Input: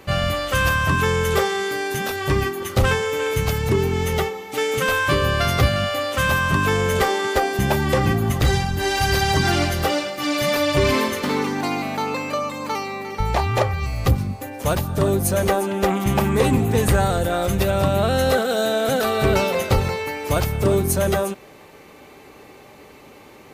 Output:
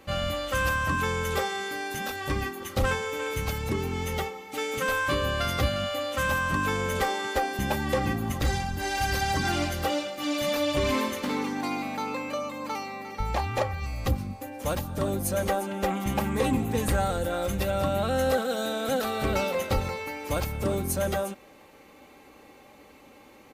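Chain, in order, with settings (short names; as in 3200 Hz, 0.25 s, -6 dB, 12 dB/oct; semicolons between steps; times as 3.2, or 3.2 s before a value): comb 3.7 ms, depth 42%; gain -8 dB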